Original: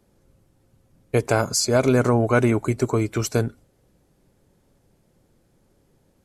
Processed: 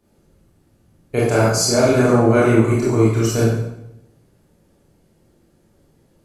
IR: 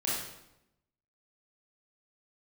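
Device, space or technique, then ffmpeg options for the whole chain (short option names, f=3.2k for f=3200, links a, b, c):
bathroom: -filter_complex "[1:a]atrim=start_sample=2205[a];[0:a][a]afir=irnorm=-1:irlink=0,volume=-2.5dB"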